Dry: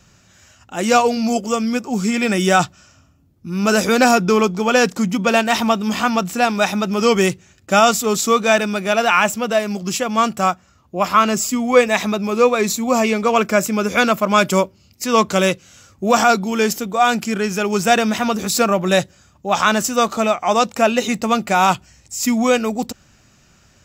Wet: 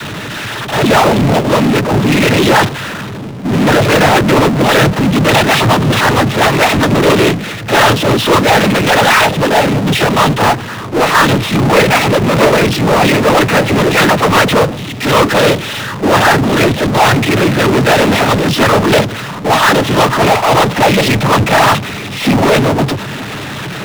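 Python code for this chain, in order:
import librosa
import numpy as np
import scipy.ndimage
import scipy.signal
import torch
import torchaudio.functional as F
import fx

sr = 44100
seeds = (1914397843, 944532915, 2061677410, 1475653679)

y = fx.lpc_vocoder(x, sr, seeds[0], excitation='whisper', order=10)
y = fx.noise_vocoder(y, sr, seeds[1], bands=12)
y = fx.power_curve(y, sr, exponent=0.35)
y = y * 10.0 ** (-2.5 / 20.0)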